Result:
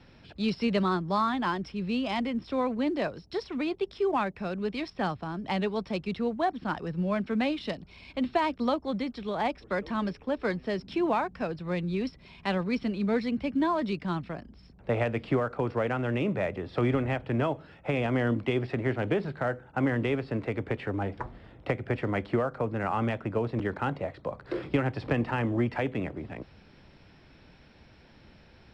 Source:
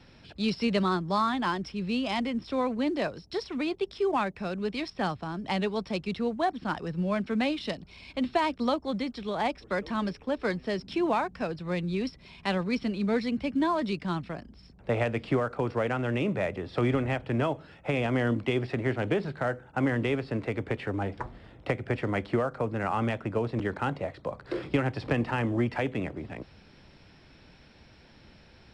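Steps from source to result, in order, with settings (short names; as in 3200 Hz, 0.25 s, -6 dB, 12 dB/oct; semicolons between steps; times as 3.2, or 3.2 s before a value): high shelf 5500 Hz -9 dB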